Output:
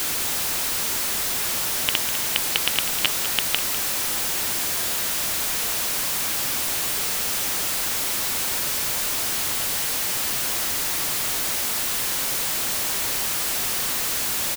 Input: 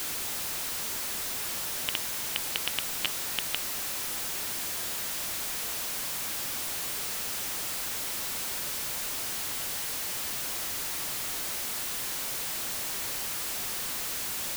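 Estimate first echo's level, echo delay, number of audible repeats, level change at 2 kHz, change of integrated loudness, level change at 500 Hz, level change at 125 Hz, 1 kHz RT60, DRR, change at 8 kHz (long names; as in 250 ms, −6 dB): −11.5 dB, 200 ms, 1, +9.0 dB, +9.0 dB, +9.0 dB, +9.0 dB, no reverb audible, no reverb audible, +9.0 dB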